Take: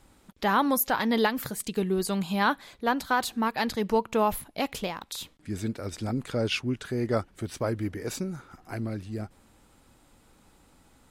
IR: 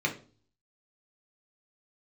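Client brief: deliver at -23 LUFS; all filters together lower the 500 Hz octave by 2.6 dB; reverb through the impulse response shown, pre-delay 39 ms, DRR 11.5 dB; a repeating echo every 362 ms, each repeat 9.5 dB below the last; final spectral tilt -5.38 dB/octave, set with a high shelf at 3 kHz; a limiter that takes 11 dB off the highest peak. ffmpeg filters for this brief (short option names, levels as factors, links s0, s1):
-filter_complex "[0:a]equalizer=f=500:t=o:g=-3,highshelf=f=3000:g=-8.5,alimiter=level_in=1.19:limit=0.0631:level=0:latency=1,volume=0.841,aecho=1:1:362|724|1086|1448:0.335|0.111|0.0365|0.012,asplit=2[s0][s1];[1:a]atrim=start_sample=2205,adelay=39[s2];[s1][s2]afir=irnorm=-1:irlink=0,volume=0.0944[s3];[s0][s3]amix=inputs=2:normalize=0,volume=3.98"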